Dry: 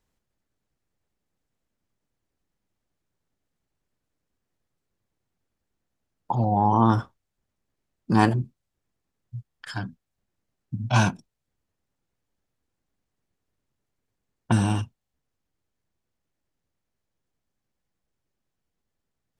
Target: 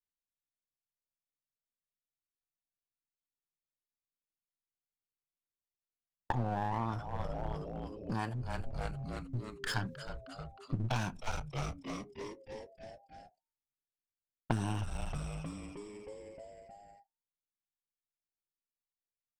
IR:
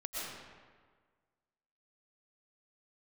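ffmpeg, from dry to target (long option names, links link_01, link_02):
-filter_complex "[0:a]agate=range=-33dB:threshold=-49dB:ratio=3:detection=peak,asplit=8[link_01][link_02][link_03][link_04][link_05][link_06][link_07][link_08];[link_02]adelay=312,afreqshift=-130,volume=-15dB[link_09];[link_03]adelay=624,afreqshift=-260,volume=-19dB[link_10];[link_04]adelay=936,afreqshift=-390,volume=-23dB[link_11];[link_05]adelay=1248,afreqshift=-520,volume=-27dB[link_12];[link_06]adelay=1560,afreqshift=-650,volume=-31.1dB[link_13];[link_07]adelay=1872,afreqshift=-780,volume=-35.1dB[link_14];[link_08]adelay=2184,afreqshift=-910,volume=-39.1dB[link_15];[link_01][link_09][link_10][link_11][link_12][link_13][link_14][link_15]amix=inputs=8:normalize=0,acompressor=threshold=-32dB:ratio=16,adynamicequalizer=threshold=0.00251:dfrequency=290:dqfactor=0.78:tfrequency=290:tqfactor=0.78:attack=5:release=100:ratio=0.375:range=4:mode=cutabove:tftype=bell,aeval=exprs='clip(val(0),-1,0.00794)':channel_layout=same,volume=4.5dB"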